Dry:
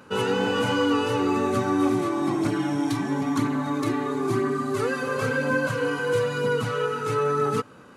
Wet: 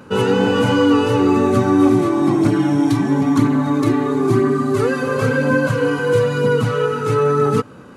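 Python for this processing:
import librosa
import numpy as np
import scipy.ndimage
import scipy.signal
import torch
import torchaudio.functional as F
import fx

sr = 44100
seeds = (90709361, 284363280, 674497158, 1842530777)

y = fx.low_shelf(x, sr, hz=500.0, db=7.5)
y = y * librosa.db_to_amplitude(4.0)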